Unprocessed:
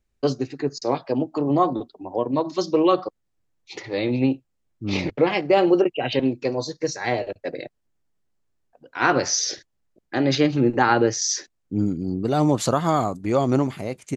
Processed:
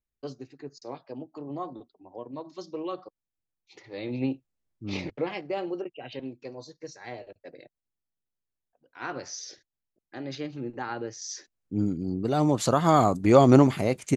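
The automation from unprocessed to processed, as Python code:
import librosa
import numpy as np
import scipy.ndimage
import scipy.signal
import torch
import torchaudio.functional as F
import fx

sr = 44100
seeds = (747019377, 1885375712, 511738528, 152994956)

y = fx.gain(x, sr, db=fx.line((3.76, -16.0), (4.22, -8.0), (4.94, -8.0), (5.75, -16.0), (11.16, -16.0), (11.79, -4.0), (12.57, -4.0), (13.17, 4.0)))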